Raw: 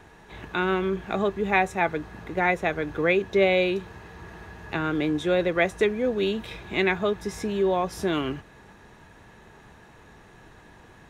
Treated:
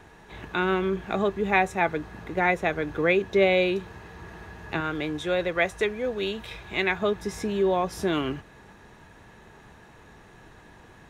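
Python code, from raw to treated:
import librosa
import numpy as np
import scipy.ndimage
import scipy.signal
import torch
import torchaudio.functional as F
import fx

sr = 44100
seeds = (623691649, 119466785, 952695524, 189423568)

y = fx.peak_eq(x, sr, hz=250.0, db=-7.0, octaves=1.7, at=(4.8, 7.02))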